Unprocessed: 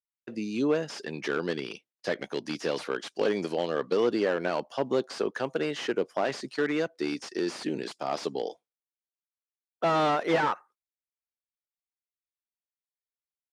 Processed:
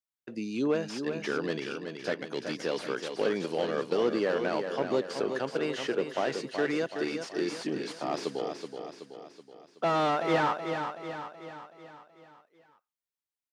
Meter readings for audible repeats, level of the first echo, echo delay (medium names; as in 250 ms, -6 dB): 5, -7.0 dB, 376 ms